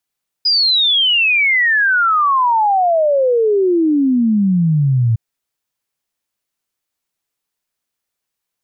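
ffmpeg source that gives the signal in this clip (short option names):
-f lavfi -i "aevalsrc='0.299*clip(min(t,4.71-t)/0.01,0,1)*sin(2*PI*5000*4.71/log(110/5000)*(exp(log(110/5000)*t/4.71)-1))':d=4.71:s=44100"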